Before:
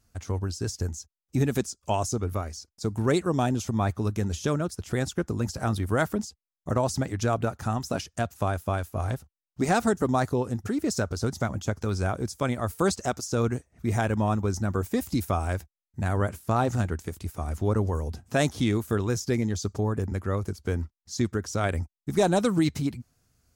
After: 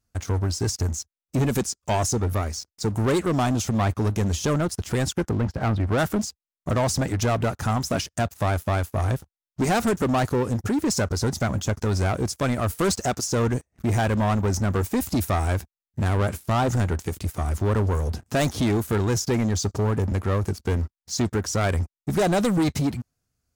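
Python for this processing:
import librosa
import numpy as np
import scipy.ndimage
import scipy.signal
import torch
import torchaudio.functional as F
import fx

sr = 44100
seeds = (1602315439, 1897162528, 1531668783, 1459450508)

y = fx.lowpass(x, sr, hz=2000.0, slope=12, at=(5.29, 5.98))
y = fx.leveller(y, sr, passes=3)
y = F.gain(torch.from_numpy(y), -3.5).numpy()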